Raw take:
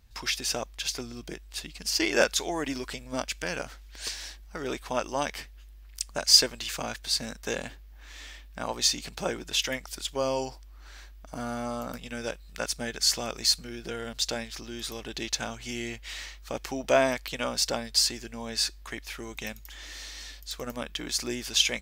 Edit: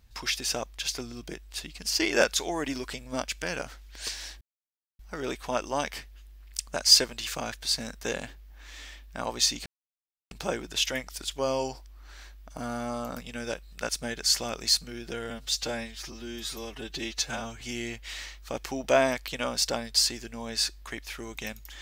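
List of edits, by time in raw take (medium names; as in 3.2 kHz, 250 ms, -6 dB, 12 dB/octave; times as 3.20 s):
4.41 s: insert silence 0.58 s
9.08 s: insert silence 0.65 s
14.07–15.61 s: stretch 1.5×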